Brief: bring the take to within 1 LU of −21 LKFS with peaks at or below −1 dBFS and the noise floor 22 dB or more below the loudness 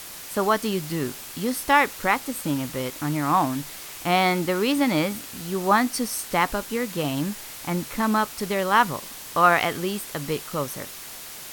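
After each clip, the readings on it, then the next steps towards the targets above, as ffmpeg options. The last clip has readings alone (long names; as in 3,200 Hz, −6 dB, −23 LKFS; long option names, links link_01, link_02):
background noise floor −39 dBFS; target noise floor −46 dBFS; integrated loudness −24.0 LKFS; sample peak −4.5 dBFS; target loudness −21.0 LKFS
→ -af "afftdn=noise_reduction=7:noise_floor=-39"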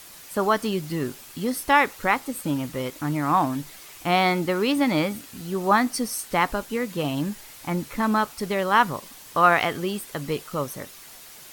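background noise floor −45 dBFS; target noise floor −47 dBFS
→ -af "afftdn=noise_reduction=6:noise_floor=-45"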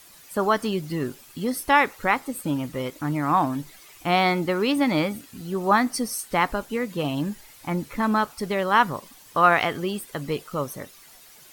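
background noise floor −50 dBFS; integrated loudness −24.5 LKFS; sample peak −5.0 dBFS; target loudness −21.0 LKFS
→ -af "volume=3.5dB"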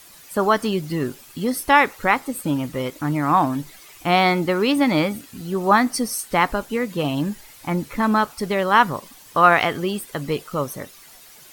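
integrated loudness −21.0 LKFS; sample peak −1.5 dBFS; background noise floor −46 dBFS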